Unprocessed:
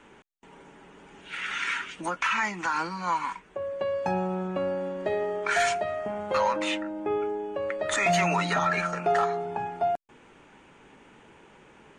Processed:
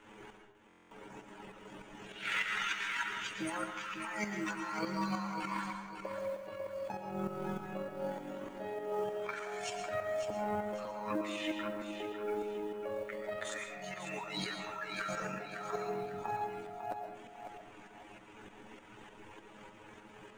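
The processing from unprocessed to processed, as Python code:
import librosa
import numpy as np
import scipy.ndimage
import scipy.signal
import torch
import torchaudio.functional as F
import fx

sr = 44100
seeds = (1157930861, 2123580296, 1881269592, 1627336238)

y = fx.dereverb_blind(x, sr, rt60_s=1.1)
y = fx.over_compress(y, sr, threshold_db=-36.0, ratio=-1.0)
y = fx.stretch_grains(y, sr, factor=1.7, grain_ms=46.0)
y = fx.tremolo_shape(y, sr, shape='saw_up', hz=3.3, depth_pct=70)
y = fx.quant_float(y, sr, bits=4)
y = fx.echo_feedback(y, sr, ms=550, feedback_pct=34, wet_db=-8.0)
y = fx.rev_freeverb(y, sr, rt60_s=0.81, hf_ratio=0.65, predelay_ms=80, drr_db=5.0)
y = fx.buffer_glitch(y, sr, at_s=(0.68,), block=1024, repeats=9)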